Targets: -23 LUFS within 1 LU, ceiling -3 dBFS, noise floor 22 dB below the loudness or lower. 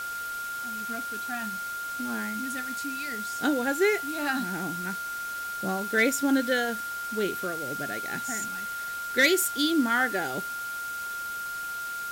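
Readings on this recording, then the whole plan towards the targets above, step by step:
steady tone 1400 Hz; tone level -32 dBFS; noise floor -35 dBFS; noise floor target -51 dBFS; loudness -28.5 LUFS; peak -11.0 dBFS; loudness target -23.0 LUFS
-> notch 1400 Hz, Q 30; denoiser 16 dB, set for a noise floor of -35 dBFS; gain +5.5 dB

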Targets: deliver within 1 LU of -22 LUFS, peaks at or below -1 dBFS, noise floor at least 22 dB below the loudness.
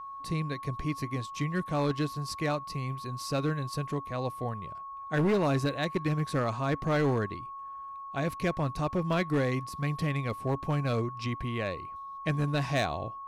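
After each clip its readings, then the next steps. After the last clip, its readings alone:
clipped 1.5%; flat tops at -21.5 dBFS; steady tone 1100 Hz; tone level -39 dBFS; loudness -31.5 LUFS; peak -21.5 dBFS; loudness target -22.0 LUFS
-> clip repair -21.5 dBFS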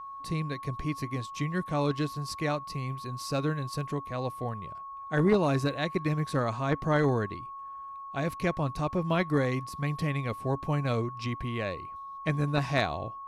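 clipped 0.0%; steady tone 1100 Hz; tone level -39 dBFS
-> notch 1100 Hz, Q 30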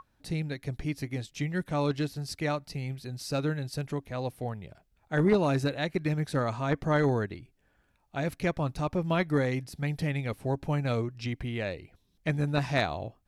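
steady tone none; loudness -31.0 LUFS; peak -12.0 dBFS; loudness target -22.0 LUFS
-> gain +9 dB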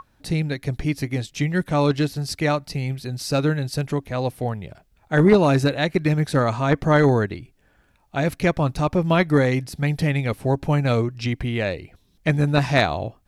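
loudness -22.0 LUFS; peak -3.0 dBFS; noise floor -61 dBFS

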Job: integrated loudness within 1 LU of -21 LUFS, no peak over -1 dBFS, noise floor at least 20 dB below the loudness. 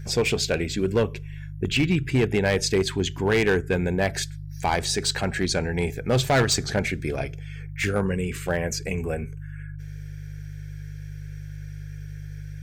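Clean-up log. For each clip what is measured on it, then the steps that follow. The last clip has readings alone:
clipped 1.1%; flat tops at -15.0 dBFS; hum 50 Hz; harmonics up to 150 Hz; hum level -33 dBFS; loudness -24.5 LUFS; peak -15.0 dBFS; loudness target -21.0 LUFS
-> clip repair -15 dBFS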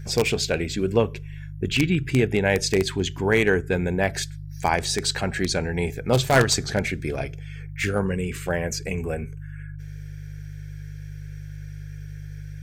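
clipped 0.0%; hum 50 Hz; harmonics up to 150 Hz; hum level -33 dBFS
-> de-hum 50 Hz, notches 3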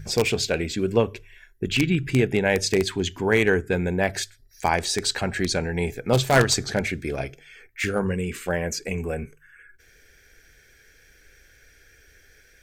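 hum none; loudness -24.0 LUFS; peak -5.5 dBFS; loudness target -21.0 LUFS
-> gain +3 dB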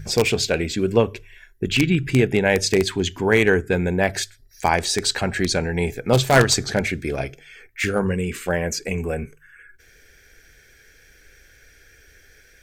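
loudness -21.0 LUFS; peak -2.5 dBFS; noise floor -53 dBFS

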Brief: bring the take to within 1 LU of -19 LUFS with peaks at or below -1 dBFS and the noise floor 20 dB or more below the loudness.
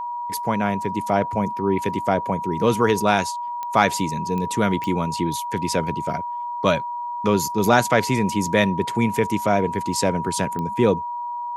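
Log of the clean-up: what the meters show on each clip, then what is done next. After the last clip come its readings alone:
clicks 4; steady tone 960 Hz; tone level -26 dBFS; loudness -22.0 LUFS; peak -2.0 dBFS; loudness target -19.0 LUFS
-> de-click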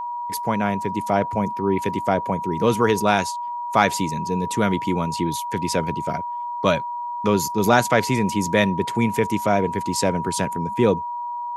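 clicks 0; steady tone 960 Hz; tone level -26 dBFS
-> notch 960 Hz, Q 30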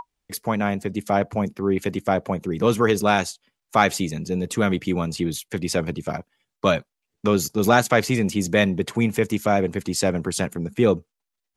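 steady tone none; loudness -23.0 LUFS; peak -2.0 dBFS; loudness target -19.0 LUFS
-> gain +4 dB; limiter -1 dBFS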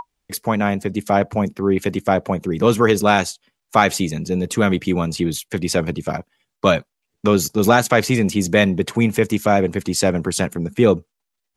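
loudness -19.0 LUFS; peak -1.0 dBFS; noise floor -79 dBFS

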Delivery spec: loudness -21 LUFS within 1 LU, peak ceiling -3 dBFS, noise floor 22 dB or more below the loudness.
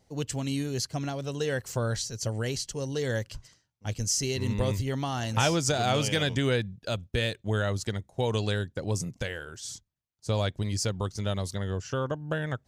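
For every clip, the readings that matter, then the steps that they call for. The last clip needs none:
loudness -30.0 LUFS; peak -10.5 dBFS; loudness target -21.0 LUFS
-> gain +9 dB; limiter -3 dBFS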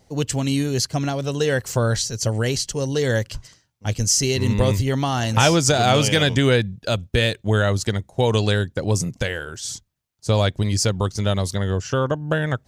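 loudness -21.0 LUFS; peak -3.0 dBFS; noise floor -64 dBFS

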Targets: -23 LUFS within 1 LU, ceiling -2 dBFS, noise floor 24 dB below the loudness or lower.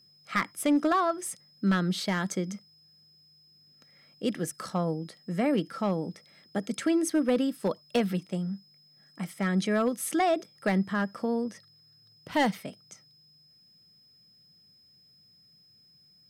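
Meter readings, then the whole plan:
clipped 0.3%; flat tops at -18.0 dBFS; steady tone 5100 Hz; tone level -58 dBFS; loudness -29.5 LUFS; peak -18.0 dBFS; loudness target -23.0 LUFS
-> clip repair -18 dBFS; notch 5100 Hz, Q 30; gain +6.5 dB

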